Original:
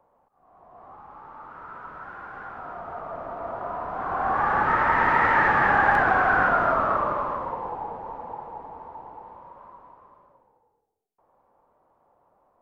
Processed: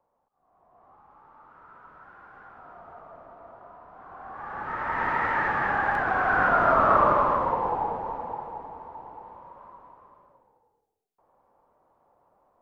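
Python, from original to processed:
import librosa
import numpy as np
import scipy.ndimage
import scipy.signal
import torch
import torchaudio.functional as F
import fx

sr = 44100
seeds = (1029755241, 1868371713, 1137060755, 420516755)

y = fx.gain(x, sr, db=fx.line((2.89, -10.0), (3.8, -17.0), (4.32, -17.0), (5.04, -6.0), (6.02, -6.0), (7.04, 5.5), (7.8, 5.5), (8.82, -1.0)))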